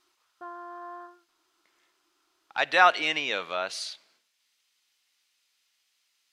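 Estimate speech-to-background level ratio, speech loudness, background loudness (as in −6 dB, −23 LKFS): 18.0 dB, −25.0 LKFS, −43.0 LKFS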